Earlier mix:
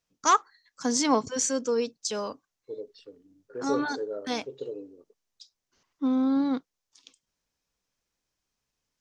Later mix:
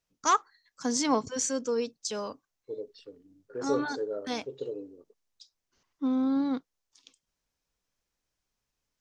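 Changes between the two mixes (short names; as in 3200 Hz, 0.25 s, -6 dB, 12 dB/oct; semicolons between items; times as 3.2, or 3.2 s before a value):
first voice -3.0 dB; master: add low shelf 80 Hz +6.5 dB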